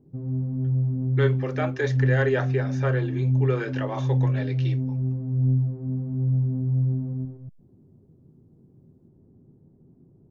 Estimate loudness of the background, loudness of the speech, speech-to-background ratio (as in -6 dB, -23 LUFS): -25.5 LUFS, -29.5 LUFS, -4.0 dB